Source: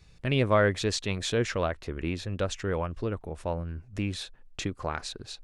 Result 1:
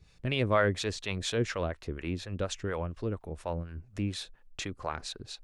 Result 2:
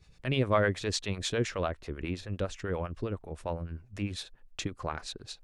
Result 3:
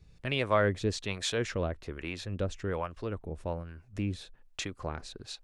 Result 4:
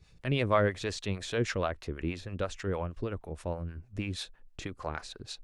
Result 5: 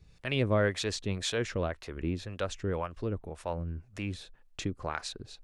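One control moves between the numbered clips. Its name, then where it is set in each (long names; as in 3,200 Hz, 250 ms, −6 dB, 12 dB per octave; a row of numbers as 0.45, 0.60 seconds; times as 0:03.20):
two-band tremolo in antiphase, speed: 4.2, 9.9, 1.2, 6.3, 1.9 Hertz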